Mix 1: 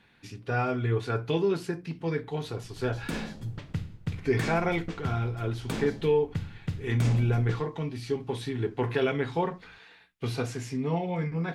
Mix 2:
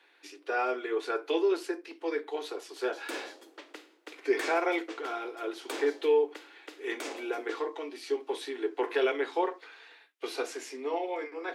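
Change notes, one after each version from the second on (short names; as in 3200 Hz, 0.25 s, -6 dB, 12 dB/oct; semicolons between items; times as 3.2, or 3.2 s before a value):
master: add steep high-pass 300 Hz 72 dB/oct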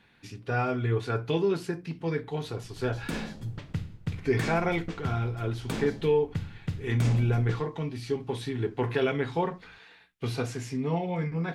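master: remove steep high-pass 300 Hz 72 dB/oct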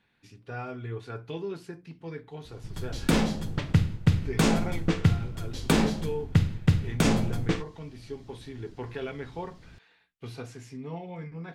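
speech -9.0 dB; background +11.0 dB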